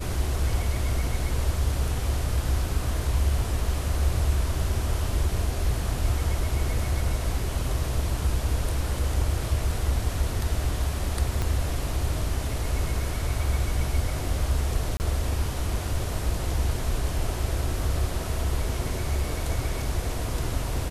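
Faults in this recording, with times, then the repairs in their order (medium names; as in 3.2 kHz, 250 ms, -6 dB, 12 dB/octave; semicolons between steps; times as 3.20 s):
11.42 s: pop -14 dBFS
14.97–15.00 s: dropout 29 ms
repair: de-click; interpolate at 14.97 s, 29 ms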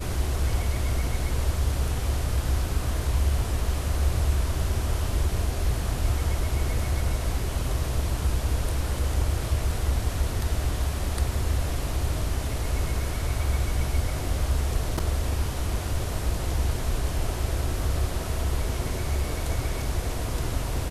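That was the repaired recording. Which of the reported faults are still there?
11.42 s: pop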